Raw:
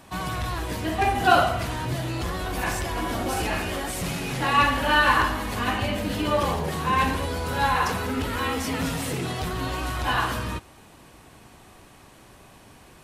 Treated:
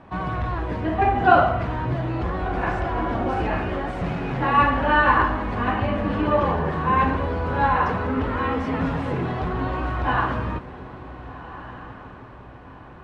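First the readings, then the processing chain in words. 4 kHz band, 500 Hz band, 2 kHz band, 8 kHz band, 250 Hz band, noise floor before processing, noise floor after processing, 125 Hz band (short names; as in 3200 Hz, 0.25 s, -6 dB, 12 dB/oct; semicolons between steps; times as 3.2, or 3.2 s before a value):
-9.0 dB, +3.5 dB, 0.0 dB, under -20 dB, +3.5 dB, -51 dBFS, -42 dBFS, +3.5 dB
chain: LPF 1600 Hz 12 dB/oct; on a send: diffused feedback echo 1.514 s, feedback 40%, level -14.5 dB; on the sum: gain +3.5 dB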